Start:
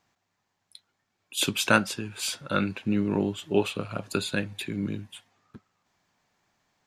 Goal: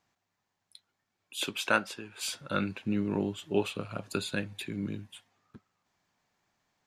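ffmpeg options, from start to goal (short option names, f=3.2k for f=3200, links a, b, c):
-filter_complex "[0:a]asettb=1/sr,asplit=3[a][b][c];[a]atrim=end=1.374[d];[b]atrim=start=1.37:end=2.21,asetpts=PTS-STARTPTS,afade=t=in:d=0.004:c=qsin,afade=t=out:st=0.836:d=0.004:c=qsin,bass=f=250:g=-11,treble=f=4k:g=-6[e];[c]atrim=start=2.206[f];[d][e]acrossfade=d=0.004:c1=hsin:c2=qsin[g];[g][f]acrossfade=d=0.004:c1=qsin:c2=hsin,volume=-4.5dB"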